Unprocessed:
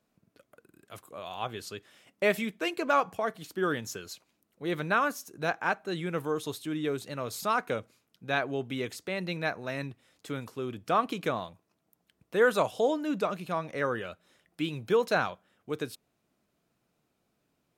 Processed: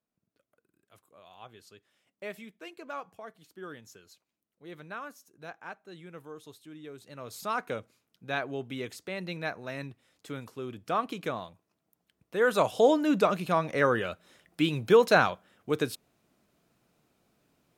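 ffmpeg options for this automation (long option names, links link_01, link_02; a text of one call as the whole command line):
ffmpeg -i in.wav -af "volume=5.5dB,afade=type=in:start_time=6.93:duration=0.67:silence=0.281838,afade=type=in:start_time=12.39:duration=0.5:silence=0.375837" out.wav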